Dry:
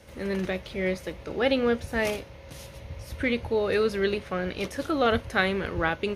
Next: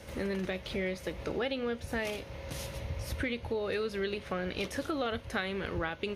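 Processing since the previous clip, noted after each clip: dynamic bell 3.3 kHz, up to +4 dB, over -42 dBFS, Q 1.4; compression 6:1, threshold -35 dBFS, peak gain reduction 16.5 dB; trim +3.5 dB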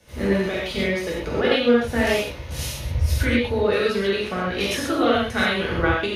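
gated-style reverb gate 160 ms flat, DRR -5.5 dB; three bands expanded up and down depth 70%; trim +7 dB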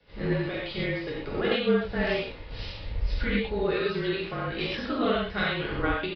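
resampled via 11.025 kHz; frequency shift -34 Hz; trim -6.5 dB

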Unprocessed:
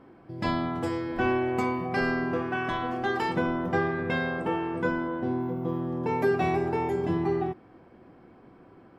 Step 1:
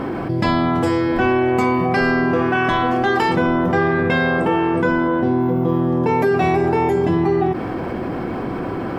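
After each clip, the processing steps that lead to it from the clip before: level flattener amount 70%; trim +6 dB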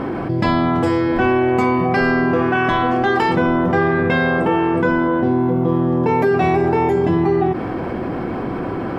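treble shelf 5.4 kHz -7 dB; trim +1 dB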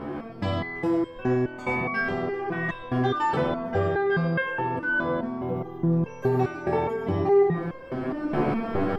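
level rider gain up to 11.5 dB; reverberation RT60 0.65 s, pre-delay 60 ms, DRR 5 dB; resonator arpeggio 4.8 Hz 73–530 Hz; trim -2 dB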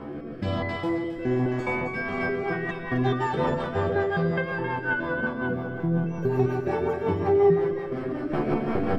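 on a send: two-band feedback delay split 1 kHz, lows 142 ms, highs 266 ms, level -3.5 dB; on the sum: rotary cabinet horn 1.1 Hz, later 5.5 Hz, at 1.83 s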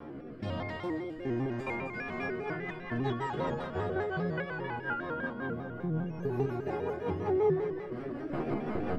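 vibrato with a chosen wave square 5 Hz, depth 100 cents; trim -8 dB

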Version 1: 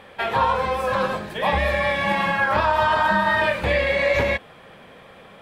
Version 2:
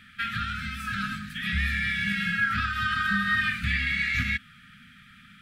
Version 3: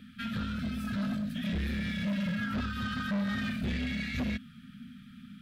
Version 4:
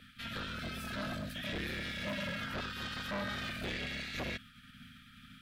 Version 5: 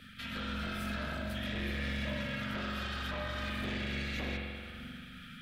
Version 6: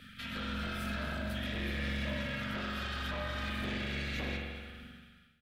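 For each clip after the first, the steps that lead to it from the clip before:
FFT band-reject 260–1200 Hz; trim -2.5 dB
ten-band graphic EQ 250 Hz +12 dB, 500 Hz +12 dB, 1 kHz -8 dB, 2 kHz -10 dB, 8 kHz -5 dB; saturation -27 dBFS, distortion -9 dB; trim -1 dB
spectral peaks clipped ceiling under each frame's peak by 18 dB; trim -6.5 dB
compression 2.5:1, threshold -45 dBFS, peak gain reduction 8 dB; reverberation RT60 2.0 s, pre-delay 43 ms, DRR -2 dB; trim +3 dB
fade out at the end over 1.07 s; feedback delay 228 ms, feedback 35%, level -15 dB

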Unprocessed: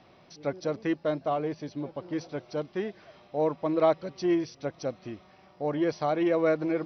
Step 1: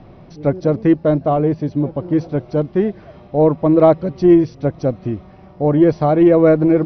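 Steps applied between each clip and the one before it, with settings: tilt EQ -4 dB/octave; trim +9 dB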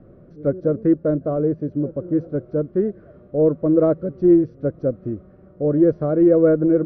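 FFT filter 140 Hz 0 dB, 550 Hz +5 dB, 850 Hz -16 dB, 1.4 kHz +1 dB, 2.3 kHz -15 dB, 4.4 kHz -20 dB; trim -6.5 dB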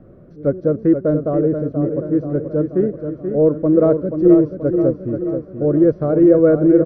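feedback delay 481 ms, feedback 56%, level -7.5 dB; trim +2.5 dB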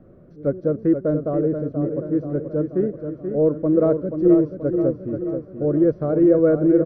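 hum notches 60/120 Hz; trim -4 dB

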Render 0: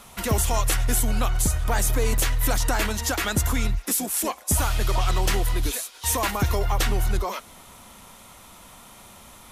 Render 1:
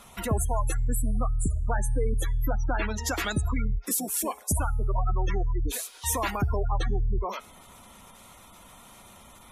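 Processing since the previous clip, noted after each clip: spectral gate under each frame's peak -20 dB strong; de-hum 424.3 Hz, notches 40; trim -3 dB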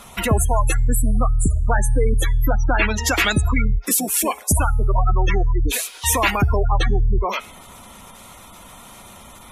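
dynamic bell 2.5 kHz, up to +8 dB, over -53 dBFS, Q 1.6; trim +8.5 dB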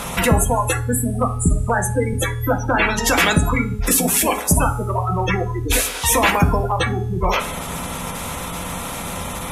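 spectral levelling over time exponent 0.6; on a send at -4.5 dB: reverberation RT60 0.40 s, pre-delay 3 ms; on the sum: trim -1 dB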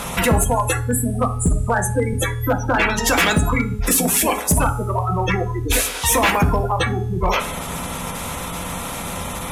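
hard clipper -10 dBFS, distortion -19 dB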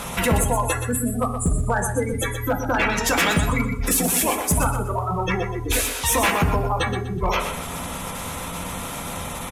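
feedback delay 123 ms, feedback 29%, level -8.5 dB; trim -3.5 dB

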